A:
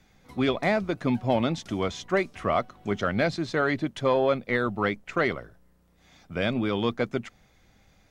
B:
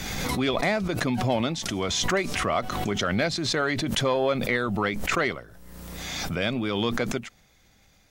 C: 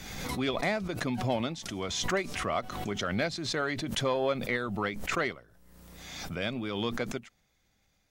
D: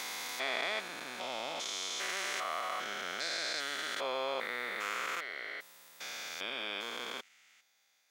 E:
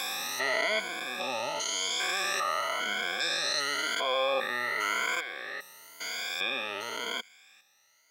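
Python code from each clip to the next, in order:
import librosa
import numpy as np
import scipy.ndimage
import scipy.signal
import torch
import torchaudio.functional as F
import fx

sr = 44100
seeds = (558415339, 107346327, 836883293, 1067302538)

y1 = fx.high_shelf(x, sr, hz=3000.0, db=9.0)
y1 = fx.pre_swell(y1, sr, db_per_s=25.0)
y1 = y1 * librosa.db_to_amplitude(-2.0)
y2 = fx.upward_expand(y1, sr, threshold_db=-37.0, expansion=1.5)
y2 = y2 * librosa.db_to_amplitude(-4.0)
y3 = fx.spec_steps(y2, sr, hold_ms=400)
y3 = scipy.signal.sosfilt(scipy.signal.bessel(2, 1100.0, 'highpass', norm='mag', fs=sr, output='sos'), y3)
y3 = y3 * librosa.db_to_amplitude(5.0)
y4 = fx.spec_ripple(y3, sr, per_octave=1.8, drift_hz=0.94, depth_db=22)
y4 = y4 * librosa.db_to_amplitude(1.5)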